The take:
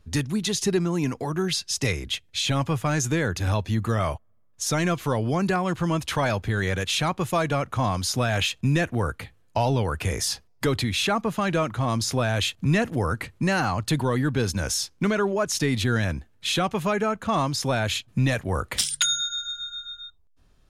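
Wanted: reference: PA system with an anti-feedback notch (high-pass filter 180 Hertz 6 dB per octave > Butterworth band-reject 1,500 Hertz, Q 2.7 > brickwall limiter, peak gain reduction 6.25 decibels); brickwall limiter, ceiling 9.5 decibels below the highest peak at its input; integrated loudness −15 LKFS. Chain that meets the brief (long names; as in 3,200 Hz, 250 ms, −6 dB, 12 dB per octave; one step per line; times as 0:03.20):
brickwall limiter −19.5 dBFS
high-pass filter 180 Hz 6 dB per octave
Butterworth band-reject 1,500 Hz, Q 2.7
level +18 dB
brickwall limiter −5.5 dBFS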